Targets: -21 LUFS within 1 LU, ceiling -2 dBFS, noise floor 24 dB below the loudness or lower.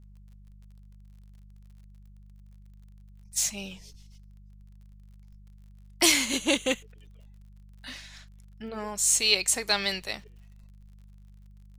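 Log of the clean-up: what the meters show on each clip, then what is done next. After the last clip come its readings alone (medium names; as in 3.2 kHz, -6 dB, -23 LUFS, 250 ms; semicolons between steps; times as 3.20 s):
tick rate 42 per s; hum 50 Hz; highest harmonic 200 Hz; hum level -48 dBFS; loudness -25.0 LUFS; peak level -6.5 dBFS; loudness target -21.0 LUFS
-> de-click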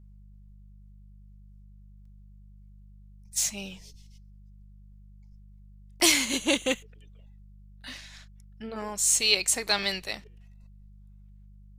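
tick rate 0.17 per s; hum 50 Hz; highest harmonic 200 Hz; hum level -48 dBFS
-> de-hum 50 Hz, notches 4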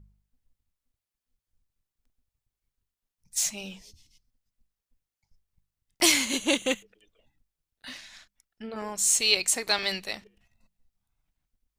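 hum not found; loudness -24.5 LUFS; peak level -6.5 dBFS; loudness target -21.0 LUFS
-> trim +3.5 dB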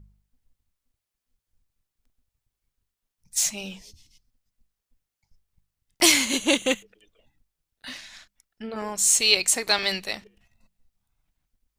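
loudness -21.0 LUFS; peak level -3.0 dBFS; noise floor -86 dBFS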